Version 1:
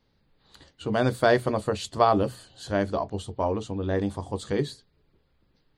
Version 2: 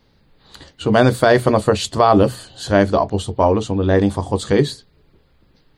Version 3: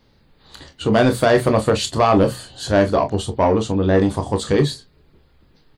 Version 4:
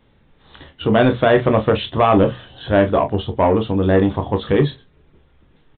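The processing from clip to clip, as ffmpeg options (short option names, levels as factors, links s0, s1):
-af "alimiter=level_in=4.22:limit=0.891:release=50:level=0:latency=1,volume=0.891"
-af "asoftclip=type=tanh:threshold=0.447,aecho=1:1:27|42:0.335|0.188"
-af "aresample=8000,aresample=44100,volume=1.12"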